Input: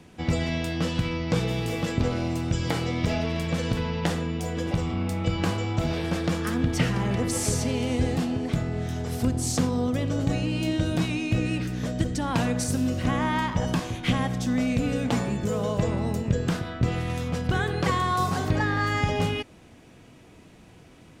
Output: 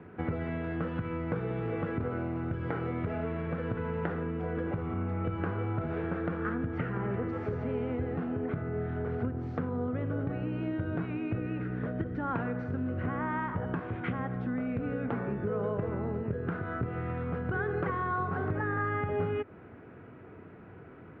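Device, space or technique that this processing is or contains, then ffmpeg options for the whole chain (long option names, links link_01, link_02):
bass amplifier: -af "acompressor=threshold=-32dB:ratio=4,highpass=79,equalizer=frequency=96:width_type=q:width=4:gain=5,equalizer=frequency=410:width_type=q:width=4:gain=8,equalizer=frequency=1400:width_type=q:width=4:gain=9,lowpass=frequency=2000:width=0.5412,lowpass=frequency=2000:width=1.3066"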